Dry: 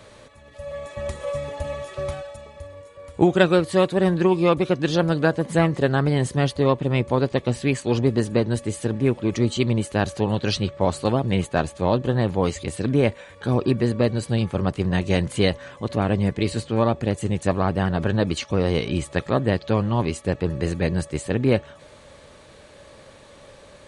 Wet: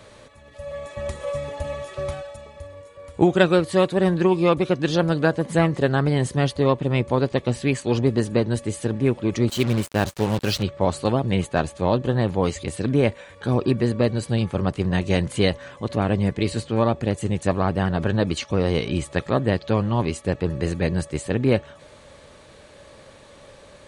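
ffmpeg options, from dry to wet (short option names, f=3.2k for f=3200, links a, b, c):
-filter_complex "[0:a]asettb=1/sr,asplit=3[a][b][c];[a]atrim=end=9.484[d];[b]atrim=start=9.48:end=10.63,asetpts=PTS-STARTPTS,afade=t=in:d=0.004:c=qsin,afade=t=out:st=1.146:d=0.004:c=qsin,acrusher=bits=4:mix=0:aa=0.5[e];[c]atrim=start=10.626[f];[d][e]acrossfade=d=0.004:c1=hsin:c2=qsin[g];[g][f]acrossfade=d=0.004:c1=qsin:c2=hsin"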